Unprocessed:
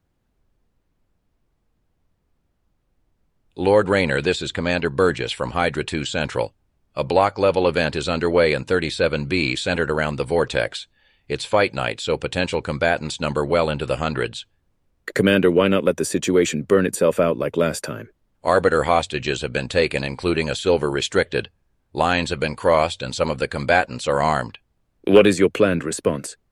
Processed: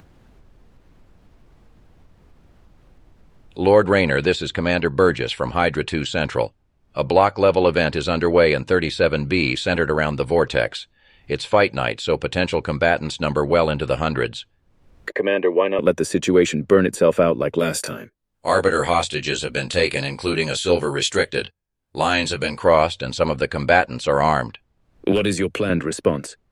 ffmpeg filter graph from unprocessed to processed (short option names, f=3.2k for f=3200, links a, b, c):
-filter_complex "[0:a]asettb=1/sr,asplit=3[a][b][c];[a]atrim=end=15.124[d];[b]atrim=start=15.12:end=15.79,asetpts=PTS-STARTPTS,afade=t=in:d=0.004:c=qsin,afade=t=out:st=0.666:d=0.004:c=qsin,asuperstop=centerf=1400:order=8:qfactor=3.8,acrossover=split=360 2600:gain=0.0631 1 0.0708[e][f][g];[e][f][g]amix=inputs=3:normalize=0[h];[c]atrim=start=15.786[i];[d][h]acrossfade=d=0.004:c1=hsin:c2=qsin[j];[j][i]acrossfade=d=0.004:c1=qsin:c2=hsin,asettb=1/sr,asplit=3[k][l][m];[k]atrim=end=17.594[n];[l]atrim=start=17.59:end=22.58,asetpts=PTS-STARTPTS,afade=t=in:d=0.004:c=qsin,afade=t=out:st=4.986:d=0.004:c=qsin,agate=range=-16dB:threshold=-42dB:ratio=16:release=100:detection=peak,aemphasis=mode=production:type=75kf,flanger=delay=19.5:depth=3.3:speed=1.1[o];[m]atrim=start=22.576[p];[n][o]acrossfade=d=0.004:c1=hsin:c2=qsin[q];[q][p]acrossfade=d=0.004:c1=qsin:c2=hsin,asettb=1/sr,asplit=3[r][s][t];[r]atrim=end=25.124[u];[s]atrim=start=25.12:end=25.7,asetpts=PTS-STARTPTS,afade=t=in:d=0.004:c=qsin,afade=t=out:st=0.576:d=0.004:c=qsin,equalizer=f=9.9k:t=o:w=0.71:g=6,acrossover=split=150|3000[v][w][x];[w]acompressor=threshold=-22dB:ratio=3:attack=3.2:release=140:knee=2.83:detection=peak[y];[v][y][x]amix=inputs=3:normalize=0[z];[t]atrim=start=25.696[aa];[u][z]acrossfade=d=0.004:c1=hsin:c2=qsin[ab];[ab][aa]acrossfade=d=0.004:c1=qsin:c2=hsin,highshelf=f=8.3k:g=-11.5,acompressor=mode=upward:threshold=-38dB:ratio=2.5,volume=2dB"